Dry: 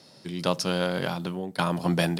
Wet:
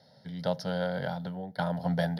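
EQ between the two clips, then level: high shelf 2000 Hz -11 dB; fixed phaser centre 1700 Hz, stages 8; 0.0 dB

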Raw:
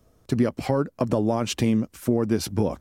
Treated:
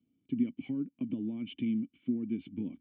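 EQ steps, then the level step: vocal tract filter i; HPF 180 Hz 12 dB/oct; bell 530 Hz -11.5 dB 1.3 oct; 0.0 dB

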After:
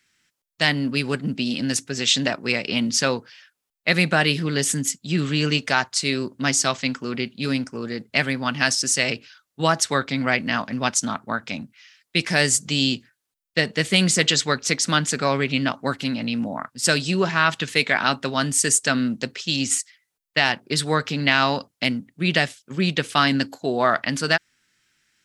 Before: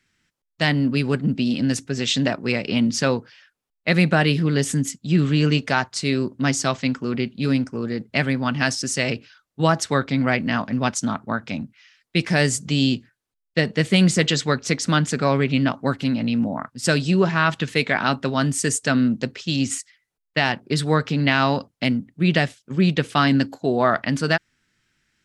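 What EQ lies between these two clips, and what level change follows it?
tilt +2 dB/oct; 0.0 dB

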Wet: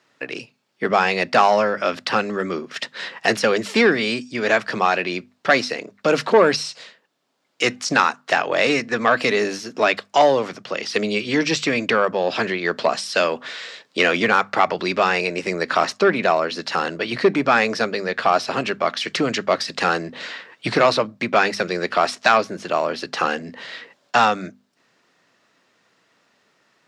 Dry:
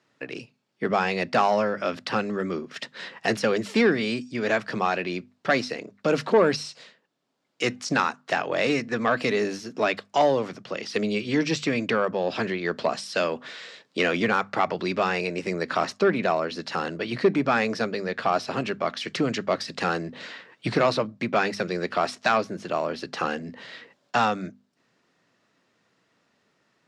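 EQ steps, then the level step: low shelf 330 Hz -8.5 dB; +7.5 dB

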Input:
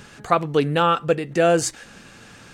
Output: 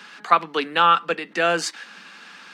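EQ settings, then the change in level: steep high-pass 170 Hz 96 dB/oct; band shelf 2100 Hz +11.5 dB 2.9 oct; -7.0 dB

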